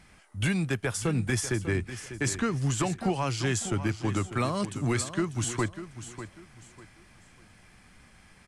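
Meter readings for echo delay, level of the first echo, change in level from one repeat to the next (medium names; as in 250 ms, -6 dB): 596 ms, -12.0 dB, -11.0 dB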